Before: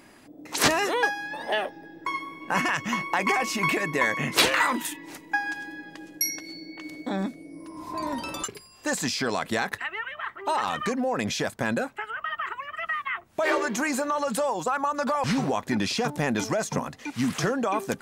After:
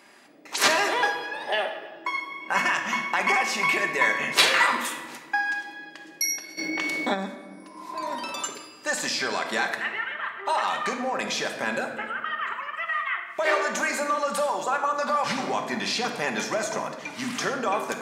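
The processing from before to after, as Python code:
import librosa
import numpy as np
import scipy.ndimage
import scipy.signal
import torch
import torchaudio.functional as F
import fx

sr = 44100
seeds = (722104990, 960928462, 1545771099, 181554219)

y = fx.weighting(x, sr, curve='A')
y = fx.room_shoebox(y, sr, seeds[0], volume_m3=1200.0, walls='mixed', distance_m=1.2)
y = fx.env_flatten(y, sr, amount_pct=50, at=(6.57, 7.13), fade=0.02)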